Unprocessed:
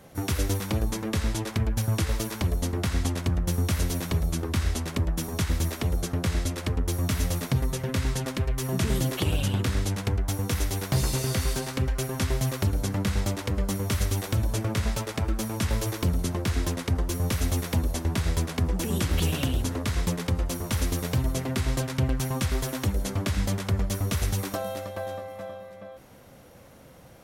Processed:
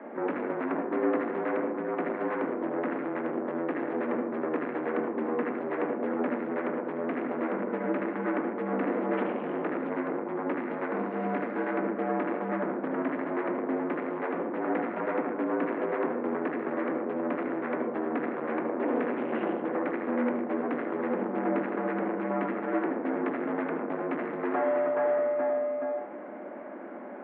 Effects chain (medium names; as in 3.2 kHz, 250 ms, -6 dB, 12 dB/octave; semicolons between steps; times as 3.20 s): bass shelf 330 Hz +4.5 dB; saturation -32.5 dBFS, distortion -5 dB; reverberation RT60 0.50 s, pre-delay 68 ms, DRR 4.5 dB; mistuned SSB +67 Hz 190–2000 Hz; trim +8.5 dB